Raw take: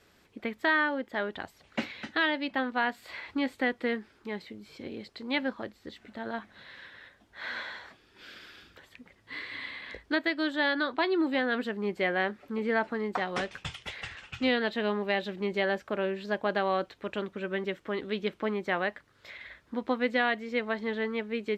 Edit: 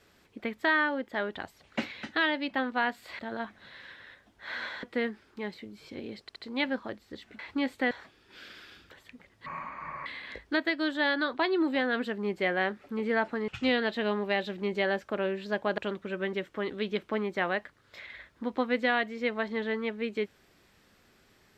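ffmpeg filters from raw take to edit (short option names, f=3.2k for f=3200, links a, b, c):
-filter_complex "[0:a]asplit=11[a][b][c][d][e][f][g][h][i][j][k];[a]atrim=end=3.192[l];[b]atrim=start=6.128:end=7.772[m];[c]atrim=start=3.708:end=5.172[n];[d]atrim=start=5.098:end=5.172[o];[e]atrim=start=5.098:end=6.132[p];[f]atrim=start=3.188:end=3.712[q];[g]atrim=start=7.768:end=9.324[r];[h]atrim=start=9.32:end=9.65,asetpts=PTS-STARTPTS,asetrate=24255,aresample=44100[s];[i]atrim=start=9.646:end=13.072[t];[j]atrim=start=14.268:end=16.572[u];[k]atrim=start=17.088[v];[l][m]acrossfade=d=0.004:c1=hsin:c2=hsin[w];[w][n]acrossfade=d=0.004:c1=hsin:c2=hsin[x];[x][o]acrossfade=d=0.004:c1=hsin:c2=hsin[y];[y][p]acrossfade=d=0.004:c1=hsin:c2=hsin[z];[z][q]acrossfade=d=0.004:c1=hsin:c2=hsin[aa];[aa][r]acrossfade=d=0.004:c1=hsin:c2=hsin[ab];[ab][s]acrossfade=d=0.004:c1=hsin:c2=hsin[ac];[ac][t]acrossfade=d=0.004:c1=hsin:c2=hsin[ad];[ad][u]acrossfade=d=0.004:c1=hsin:c2=hsin[ae];[ae][v]acrossfade=d=0.004:c1=hsin:c2=hsin"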